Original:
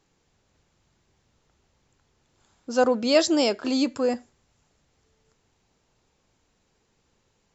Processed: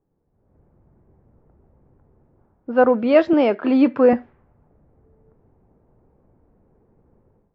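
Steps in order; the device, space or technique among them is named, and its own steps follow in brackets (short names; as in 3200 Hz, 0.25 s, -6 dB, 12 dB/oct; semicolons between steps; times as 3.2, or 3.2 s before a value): low-pass opened by the level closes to 600 Hz, open at -23 dBFS; 3.33–4.13 HPF 130 Hz 24 dB/oct; action camera in a waterproof case (LPF 2300 Hz 24 dB/oct; AGC gain up to 15 dB; gain -2 dB; AAC 48 kbps 22050 Hz)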